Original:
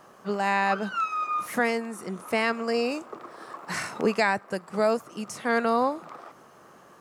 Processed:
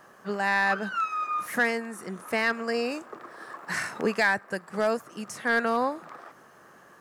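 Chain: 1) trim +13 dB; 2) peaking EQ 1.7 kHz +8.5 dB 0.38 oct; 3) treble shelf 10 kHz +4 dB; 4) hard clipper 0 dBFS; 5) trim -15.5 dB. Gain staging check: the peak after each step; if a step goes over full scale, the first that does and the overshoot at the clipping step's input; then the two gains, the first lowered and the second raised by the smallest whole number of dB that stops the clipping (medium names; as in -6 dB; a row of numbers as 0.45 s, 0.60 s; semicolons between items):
+2.0 dBFS, +4.0 dBFS, +4.0 dBFS, 0.0 dBFS, -15.5 dBFS; step 1, 4.0 dB; step 1 +9 dB, step 5 -11.5 dB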